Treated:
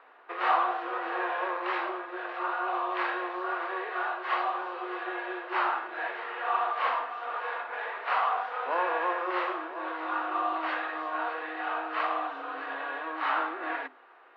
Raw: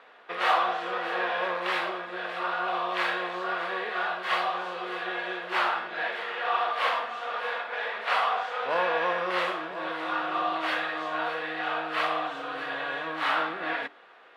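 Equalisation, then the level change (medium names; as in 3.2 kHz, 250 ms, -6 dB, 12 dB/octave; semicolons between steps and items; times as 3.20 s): rippled Chebyshev high-pass 250 Hz, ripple 6 dB; distance through air 220 m; band-stop 3.4 kHz, Q 16; +1.5 dB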